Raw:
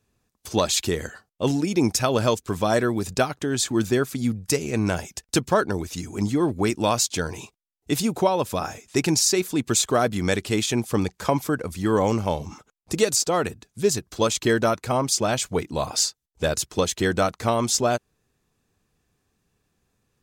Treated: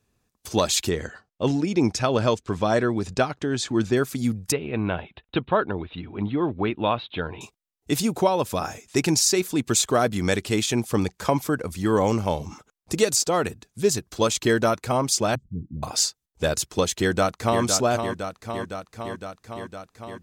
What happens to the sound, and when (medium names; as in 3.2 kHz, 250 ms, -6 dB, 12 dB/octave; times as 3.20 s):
0.89–3.97 s: distance through air 83 m
4.52–7.41 s: rippled Chebyshev low-pass 3.9 kHz, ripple 3 dB
15.35–15.83 s: inverse Chebyshev low-pass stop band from 760 Hz, stop band 60 dB
17.00–17.62 s: echo throw 510 ms, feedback 75%, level -7 dB